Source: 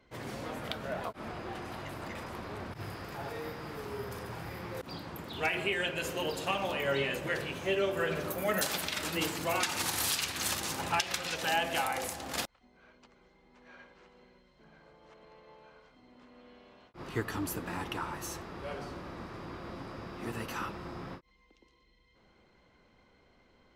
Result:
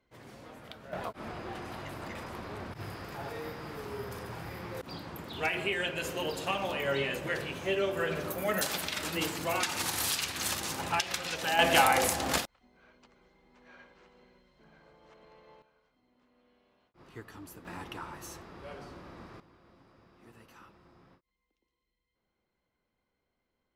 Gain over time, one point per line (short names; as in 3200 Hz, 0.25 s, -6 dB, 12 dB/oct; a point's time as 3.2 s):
-10 dB
from 0.93 s 0 dB
from 11.59 s +9 dB
from 12.38 s -1 dB
from 15.62 s -12.5 dB
from 17.65 s -5 dB
from 19.4 s -18 dB